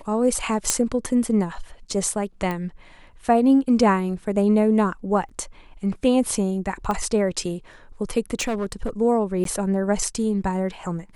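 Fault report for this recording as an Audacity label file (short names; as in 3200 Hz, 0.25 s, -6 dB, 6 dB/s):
0.700000	0.700000	pop -3 dBFS
2.510000	2.510000	pop -15 dBFS
5.290000	5.300000	gap 5.7 ms
6.910000	6.910000	pop -14 dBFS
8.390000	8.890000	clipped -20.5 dBFS
9.440000	9.450000	gap 13 ms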